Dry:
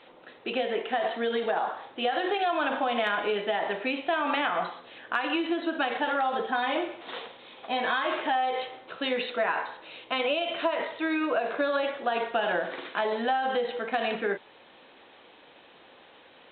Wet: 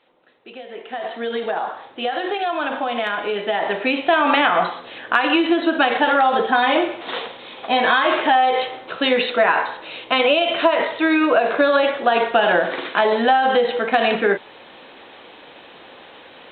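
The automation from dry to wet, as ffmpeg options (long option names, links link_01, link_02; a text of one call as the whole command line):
ffmpeg -i in.wav -af "volume=11dB,afade=type=in:start_time=0.66:duration=0.71:silence=0.251189,afade=type=in:start_time=3.28:duration=0.86:silence=0.446684" out.wav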